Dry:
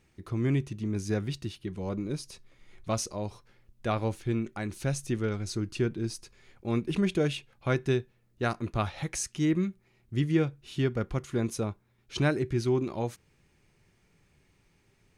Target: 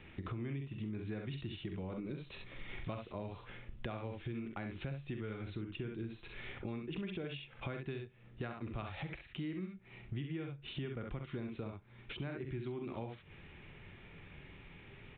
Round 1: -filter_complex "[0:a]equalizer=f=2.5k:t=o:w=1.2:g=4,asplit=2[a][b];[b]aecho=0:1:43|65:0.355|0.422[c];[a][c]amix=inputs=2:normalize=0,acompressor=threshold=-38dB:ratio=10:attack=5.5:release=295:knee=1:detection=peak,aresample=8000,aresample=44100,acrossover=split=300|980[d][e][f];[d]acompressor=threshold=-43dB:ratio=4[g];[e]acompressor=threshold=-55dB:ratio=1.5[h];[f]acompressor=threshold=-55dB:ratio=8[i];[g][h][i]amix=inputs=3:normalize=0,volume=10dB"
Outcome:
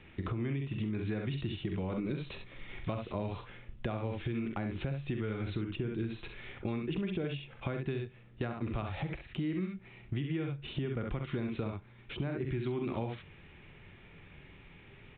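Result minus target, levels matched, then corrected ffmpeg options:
compressor: peak gain reduction -9 dB
-filter_complex "[0:a]equalizer=f=2.5k:t=o:w=1.2:g=4,asplit=2[a][b];[b]aecho=0:1:43|65:0.355|0.422[c];[a][c]amix=inputs=2:normalize=0,acompressor=threshold=-48dB:ratio=10:attack=5.5:release=295:knee=1:detection=peak,aresample=8000,aresample=44100,acrossover=split=300|980[d][e][f];[d]acompressor=threshold=-43dB:ratio=4[g];[e]acompressor=threshold=-55dB:ratio=1.5[h];[f]acompressor=threshold=-55dB:ratio=8[i];[g][h][i]amix=inputs=3:normalize=0,volume=10dB"

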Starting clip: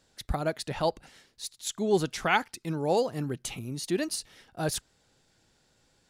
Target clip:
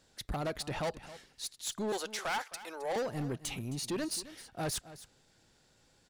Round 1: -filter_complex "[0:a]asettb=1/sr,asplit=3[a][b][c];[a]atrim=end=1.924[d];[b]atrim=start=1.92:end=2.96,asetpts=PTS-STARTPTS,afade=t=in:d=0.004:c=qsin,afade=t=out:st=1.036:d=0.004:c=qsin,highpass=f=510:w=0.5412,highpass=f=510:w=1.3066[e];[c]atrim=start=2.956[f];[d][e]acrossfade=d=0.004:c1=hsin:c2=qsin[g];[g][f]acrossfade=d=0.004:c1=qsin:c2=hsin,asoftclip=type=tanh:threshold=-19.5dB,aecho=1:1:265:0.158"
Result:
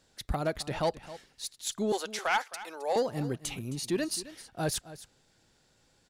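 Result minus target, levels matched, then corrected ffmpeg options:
soft clip: distortion -10 dB
-filter_complex "[0:a]asettb=1/sr,asplit=3[a][b][c];[a]atrim=end=1.924[d];[b]atrim=start=1.92:end=2.96,asetpts=PTS-STARTPTS,afade=t=in:d=0.004:c=qsin,afade=t=out:st=1.036:d=0.004:c=qsin,highpass=f=510:w=0.5412,highpass=f=510:w=1.3066[e];[c]atrim=start=2.956[f];[d][e]acrossfade=d=0.004:c1=hsin:c2=qsin[g];[g][f]acrossfade=d=0.004:c1=qsin:c2=hsin,asoftclip=type=tanh:threshold=-30.5dB,aecho=1:1:265:0.158"

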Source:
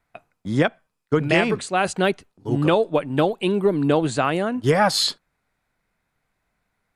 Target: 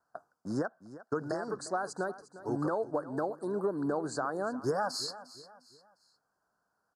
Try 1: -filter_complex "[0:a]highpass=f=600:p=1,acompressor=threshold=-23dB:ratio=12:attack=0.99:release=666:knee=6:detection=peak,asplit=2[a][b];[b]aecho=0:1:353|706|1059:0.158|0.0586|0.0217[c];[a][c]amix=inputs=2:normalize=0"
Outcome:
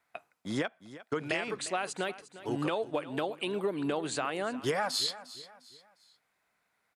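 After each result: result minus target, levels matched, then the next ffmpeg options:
2000 Hz band +4.0 dB; 8000 Hz band +3.5 dB
-filter_complex "[0:a]highpass=f=600:p=1,acompressor=threshold=-23dB:ratio=12:attack=0.99:release=666:knee=6:detection=peak,asuperstop=centerf=2700:order=12:qfactor=0.95,asplit=2[a][b];[b]aecho=0:1:353|706|1059:0.158|0.0586|0.0217[c];[a][c]amix=inputs=2:normalize=0"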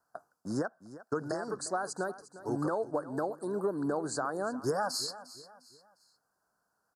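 8000 Hz band +4.5 dB
-filter_complex "[0:a]highpass=f=600:p=1,highshelf=f=7.8k:g=-11.5,acompressor=threshold=-23dB:ratio=12:attack=0.99:release=666:knee=6:detection=peak,asuperstop=centerf=2700:order=12:qfactor=0.95,asplit=2[a][b];[b]aecho=0:1:353|706|1059:0.158|0.0586|0.0217[c];[a][c]amix=inputs=2:normalize=0"

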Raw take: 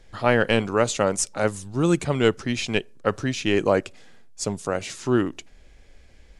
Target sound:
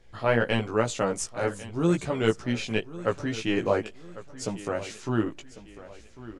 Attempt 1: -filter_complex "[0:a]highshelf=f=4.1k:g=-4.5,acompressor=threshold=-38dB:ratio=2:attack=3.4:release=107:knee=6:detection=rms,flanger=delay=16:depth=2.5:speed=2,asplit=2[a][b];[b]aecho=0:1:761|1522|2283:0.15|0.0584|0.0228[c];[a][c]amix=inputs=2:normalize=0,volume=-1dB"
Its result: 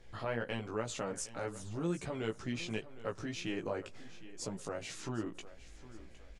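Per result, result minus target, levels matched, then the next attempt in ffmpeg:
compressor: peak gain reduction +14.5 dB; echo 0.337 s early
-filter_complex "[0:a]highshelf=f=4.1k:g=-4.5,flanger=delay=16:depth=2.5:speed=2,asplit=2[a][b];[b]aecho=0:1:761|1522|2283:0.15|0.0584|0.0228[c];[a][c]amix=inputs=2:normalize=0,volume=-1dB"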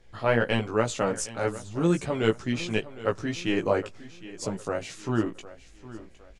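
echo 0.337 s early
-filter_complex "[0:a]highshelf=f=4.1k:g=-4.5,flanger=delay=16:depth=2.5:speed=2,asplit=2[a][b];[b]aecho=0:1:1098|2196|3294:0.15|0.0584|0.0228[c];[a][c]amix=inputs=2:normalize=0,volume=-1dB"

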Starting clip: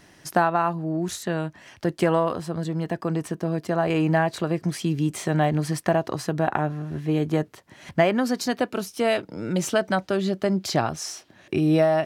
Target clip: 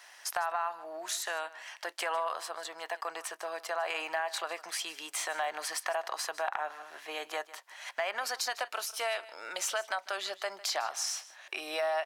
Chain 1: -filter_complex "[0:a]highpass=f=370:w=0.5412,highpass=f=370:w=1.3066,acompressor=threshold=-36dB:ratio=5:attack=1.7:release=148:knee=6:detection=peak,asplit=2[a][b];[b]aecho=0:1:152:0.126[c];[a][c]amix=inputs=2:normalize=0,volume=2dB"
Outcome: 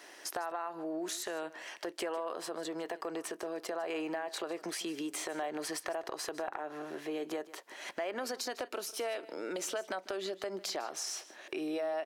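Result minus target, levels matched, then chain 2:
compressor: peak gain reduction +7 dB; 500 Hz band +3.5 dB
-filter_complex "[0:a]highpass=f=750:w=0.5412,highpass=f=750:w=1.3066,acompressor=threshold=-29dB:ratio=5:attack=1.7:release=148:knee=6:detection=peak,asplit=2[a][b];[b]aecho=0:1:152:0.126[c];[a][c]amix=inputs=2:normalize=0,volume=2dB"

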